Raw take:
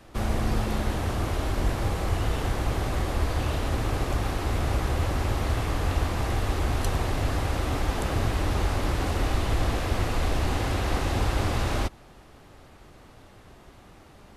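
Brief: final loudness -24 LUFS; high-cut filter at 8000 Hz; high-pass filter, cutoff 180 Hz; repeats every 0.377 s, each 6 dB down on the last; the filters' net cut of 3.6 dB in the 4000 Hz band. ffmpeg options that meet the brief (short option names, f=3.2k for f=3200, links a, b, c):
-af "highpass=180,lowpass=8k,equalizer=f=4k:t=o:g=-4.5,aecho=1:1:377|754|1131|1508|1885|2262:0.501|0.251|0.125|0.0626|0.0313|0.0157,volume=7dB"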